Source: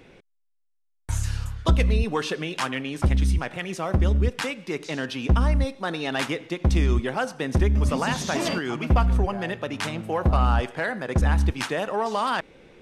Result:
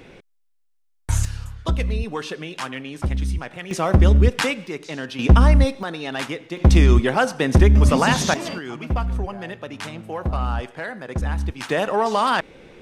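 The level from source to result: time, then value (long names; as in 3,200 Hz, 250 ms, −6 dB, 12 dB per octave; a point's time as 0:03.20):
+6 dB
from 0:01.25 −2.5 dB
from 0:03.71 +7 dB
from 0:04.67 −1 dB
from 0:05.19 +7.5 dB
from 0:05.83 −1 dB
from 0:06.57 +7.5 dB
from 0:08.34 −3.5 dB
from 0:11.69 +5.5 dB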